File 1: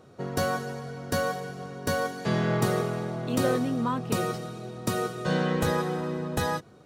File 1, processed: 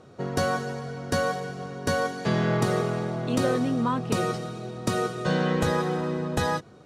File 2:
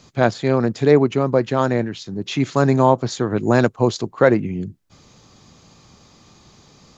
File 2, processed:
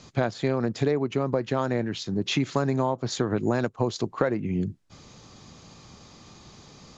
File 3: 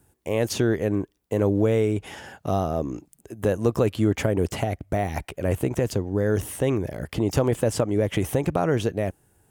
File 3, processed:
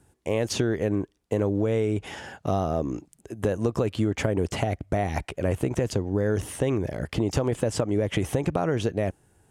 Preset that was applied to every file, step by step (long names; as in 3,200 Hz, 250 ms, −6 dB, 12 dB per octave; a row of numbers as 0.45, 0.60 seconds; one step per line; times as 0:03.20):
low-pass filter 9,100 Hz 12 dB per octave
downward compressor 12 to 1, threshold −21 dBFS
loudness normalisation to −27 LKFS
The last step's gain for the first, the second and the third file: +2.5, +0.5, +1.5 decibels